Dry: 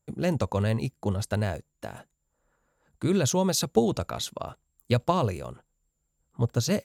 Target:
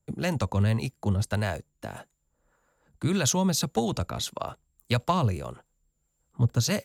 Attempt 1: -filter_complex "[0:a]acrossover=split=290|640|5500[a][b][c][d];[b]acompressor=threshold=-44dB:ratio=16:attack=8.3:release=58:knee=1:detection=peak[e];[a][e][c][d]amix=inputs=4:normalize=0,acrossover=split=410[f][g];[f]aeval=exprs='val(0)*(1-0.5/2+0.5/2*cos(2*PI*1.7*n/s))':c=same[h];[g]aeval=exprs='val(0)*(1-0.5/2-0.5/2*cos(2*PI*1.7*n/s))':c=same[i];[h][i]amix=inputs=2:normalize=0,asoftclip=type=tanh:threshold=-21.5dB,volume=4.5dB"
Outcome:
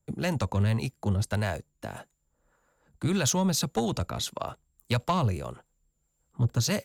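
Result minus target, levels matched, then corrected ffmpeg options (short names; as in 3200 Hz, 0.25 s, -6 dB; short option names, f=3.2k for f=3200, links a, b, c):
soft clip: distortion +11 dB
-filter_complex "[0:a]acrossover=split=290|640|5500[a][b][c][d];[b]acompressor=threshold=-44dB:ratio=16:attack=8.3:release=58:knee=1:detection=peak[e];[a][e][c][d]amix=inputs=4:normalize=0,acrossover=split=410[f][g];[f]aeval=exprs='val(0)*(1-0.5/2+0.5/2*cos(2*PI*1.7*n/s))':c=same[h];[g]aeval=exprs='val(0)*(1-0.5/2-0.5/2*cos(2*PI*1.7*n/s))':c=same[i];[h][i]amix=inputs=2:normalize=0,asoftclip=type=tanh:threshold=-14dB,volume=4.5dB"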